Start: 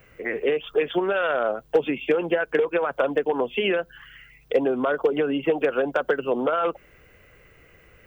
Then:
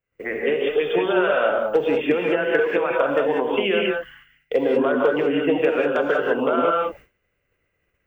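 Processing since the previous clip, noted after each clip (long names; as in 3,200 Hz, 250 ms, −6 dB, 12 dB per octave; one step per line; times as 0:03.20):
reverb whose tail is shaped and stops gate 220 ms rising, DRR −1 dB
downward expander −36 dBFS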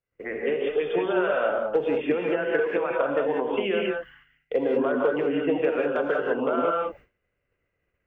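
low-pass filter 2,300 Hz 6 dB per octave
level −4 dB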